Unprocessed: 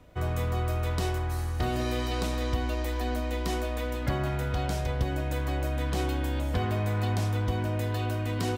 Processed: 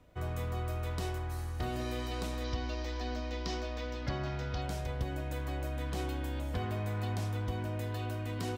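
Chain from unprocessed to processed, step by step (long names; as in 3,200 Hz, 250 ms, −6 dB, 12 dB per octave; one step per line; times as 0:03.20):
0:02.44–0:04.62: high shelf with overshoot 7,500 Hz −13.5 dB, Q 3
level −7 dB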